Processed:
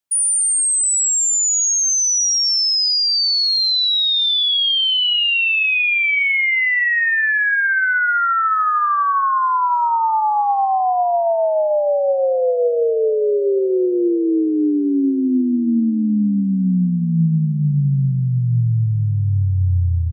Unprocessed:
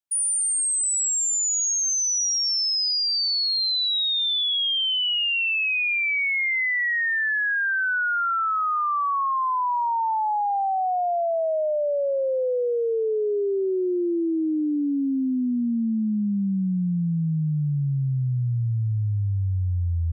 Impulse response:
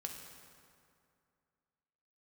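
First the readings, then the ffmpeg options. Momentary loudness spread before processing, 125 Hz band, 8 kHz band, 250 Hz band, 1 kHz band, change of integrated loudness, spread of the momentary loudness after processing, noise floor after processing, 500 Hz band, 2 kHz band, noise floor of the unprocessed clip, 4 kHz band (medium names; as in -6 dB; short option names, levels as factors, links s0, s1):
5 LU, +7.0 dB, +6.5 dB, +7.0 dB, +6.5 dB, +6.5 dB, 4 LU, -18 dBFS, +7.0 dB, +6.5 dB, -24 dBFS, +6.5 dB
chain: -filter_complex "[0:a]asplit=2[s0][s1];[s1]adelay=1341,volume=0.224,highshelf=f=4000:g=-30.2[s2];[s0][s2]amix=inputs=2:normalize=0,asplit=2[s3][s4];[1:a]atrim=start_sample=2205,lowpass=4000,adelay=43[s5];[s4][s5]afir=irnorm=-1:irlink=0,volume=0.211[s6];[s3][s6]amix=inputs=2:normalize=0,volume=2.11"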